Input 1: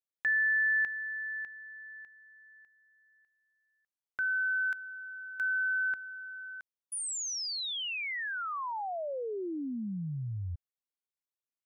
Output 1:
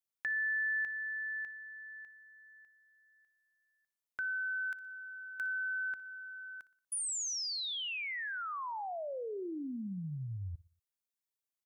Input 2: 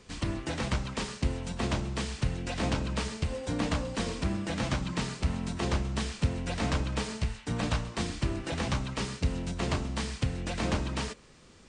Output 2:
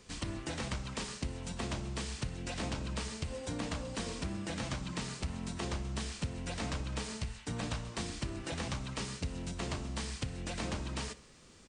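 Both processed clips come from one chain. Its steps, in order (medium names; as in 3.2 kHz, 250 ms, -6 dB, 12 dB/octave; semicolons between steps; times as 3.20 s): treble shelf 5.5 kHz +7 dB; compression 2.5:1, threshold -32 dBFS; feedback delay 60 ms, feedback 46%, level -19 dB; trim -3.5 dB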